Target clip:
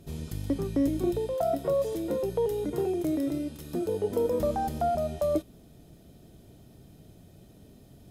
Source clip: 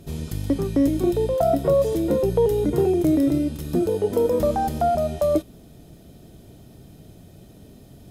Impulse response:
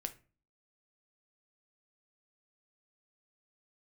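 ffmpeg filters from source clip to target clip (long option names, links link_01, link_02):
-filter_complex "[0:a]asettb=1/sr,asplit=3[link_01][link_02][link_03];[link_01]atrim=end=1.184[link_04];[link_02]atrim=start=1.18:end=3.88,asetpts=PTS-STARTPTS,afade=type=in:duration=0.004:curve=qsin,afade=type=out:start_time=2.696:duration=0.004:curve=qsin,lowshelf=frequency=240:gain=-8[link_05];[link_03]atrim=start=3.876[link_06];[link_04][link_05]acrossfade=duration=0.004:curve1=hsin:curve2=qsin[link_07];[link_07][link_06]acrossfade=duration=0.004:curve1=qsin:curve2=hsin,volume=-6.5dB"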